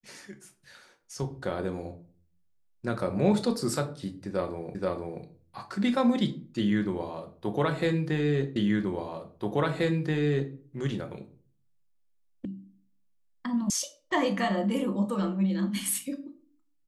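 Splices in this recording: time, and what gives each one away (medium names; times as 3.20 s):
4.75 s: repeat of the last 0.48 s
8.56 s: repeat of the last 1.98 s
12.45 s: sound stops dead
13.70 s: sound stops dead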